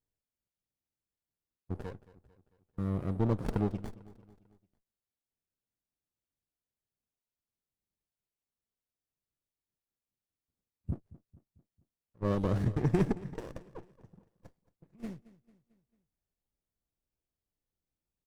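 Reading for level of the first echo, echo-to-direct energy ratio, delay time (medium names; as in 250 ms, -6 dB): -19.0 dB, -18.0 dB, 223 ms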